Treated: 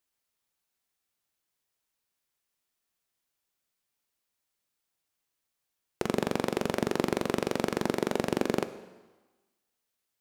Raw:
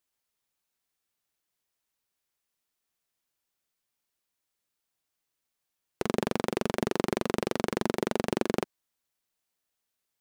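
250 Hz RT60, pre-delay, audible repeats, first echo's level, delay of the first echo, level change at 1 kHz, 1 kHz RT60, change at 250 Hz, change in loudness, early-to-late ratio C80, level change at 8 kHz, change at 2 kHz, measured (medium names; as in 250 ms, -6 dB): 1.2 s, 9 ms, no echo, no echo, no echo, 0.0 dB, 1.3 s, 0.0 dB, 0.0 dB, 14.5 dB, +0.5 dB, +0.5 dB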